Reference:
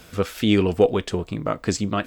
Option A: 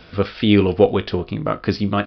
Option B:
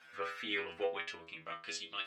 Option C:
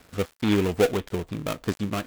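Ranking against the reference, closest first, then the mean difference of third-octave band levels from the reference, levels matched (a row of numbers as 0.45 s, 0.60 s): A, C, B; 3.5 dB, 6.0 dB, 9.0 dB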